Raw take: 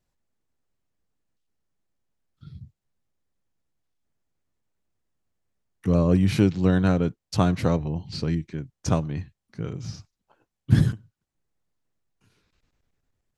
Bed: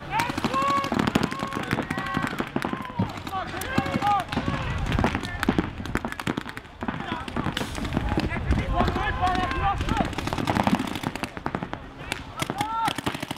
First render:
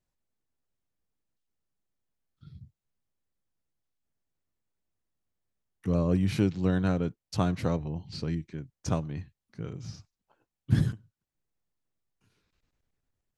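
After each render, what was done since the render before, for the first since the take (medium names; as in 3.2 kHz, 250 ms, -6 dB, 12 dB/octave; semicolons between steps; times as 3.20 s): trim -6 dB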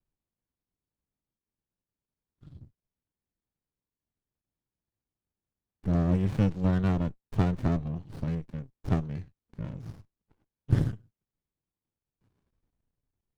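sliding maximum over 65 samples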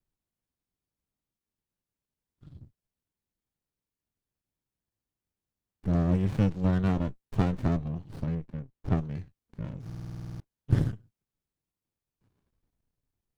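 6.86–7.62 s: doubling 15 ms -10 dB; 8.25–8.97 s: treble shelf 3.4 kHz -> 4.5 kHz -10.5 dB; 9.85 s: stutter in place 0.05 s, 11 plays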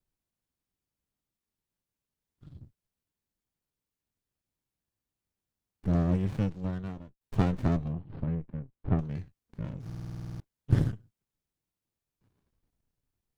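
5.90–7.21 s: fade out; 7.93–8.99 s: distance through air 420 m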